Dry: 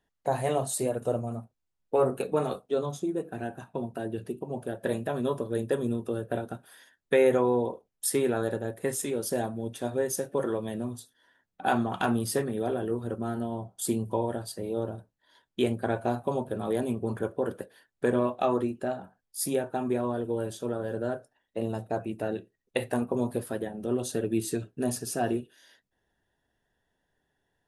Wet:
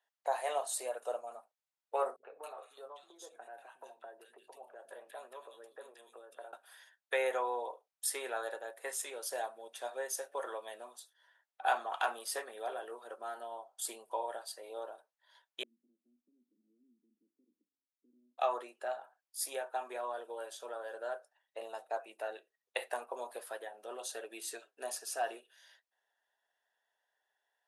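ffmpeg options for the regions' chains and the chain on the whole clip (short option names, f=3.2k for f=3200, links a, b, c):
-filter_complex "[0:a]asettb=1/sr,asplit=3[a][b][c];[a]atrim=end=2.164[d];[b]atrim=start=2.16:end=6.53,asetpts=PTS-STARTPTS,afade=t=in:d=0.004:c=qsin,afade=t=out:st=4.366:d=0.004:c=qsin,lowshelf=f=140:g=11,acompressor=threshold=-37dB:ratio=2.5:attack=3.2:release=140:knee=1:detection=peak,acrossover=split=230|2000[e][f][g];[f]adelay=70[h];[g]adelay=260[i];[e][h][i]amix=inputs=3:normalize=0,atrim=end_sample=192717[j];[c]atrim=start=6.526[k];[d][j]acrossfade=d=0.004:c1=hsin:c2=qsin[l];[l][k]acrossfade=d=0.004:c1=qsin:c2=hsin,asettb=1/sr,asplit=3[m][n][o];[m]atrim=end=15.634[p];[n]atrim=start=15.63:end=18.38,asetpts=PTS-STARTPTS,afade=t=in:d=0.004:c=qsin,afade=t=out:st=2.746:d=0.004:c=qsin,aemphasis=mode=reproduction:type=riaa,acompressor=threshold=-49dB:ratio=1.5:attack=3.2:release=140:knee=1:detection=peak,asuperpass=centerf=240:order=8:qfactor=2.1[q];[o]atrim=start=18.376[r];[p][q]acrossfade=d=0.004:c1=hsin:c2=qsin[s];[s][r]acrossfade=d=0.004:c1=qsin:c2=hsin,highpass=f=620:w=0.5412,highpass=f=620:w=1.3066,highshelf=f=9.9k:g=-6,volume=-3dB"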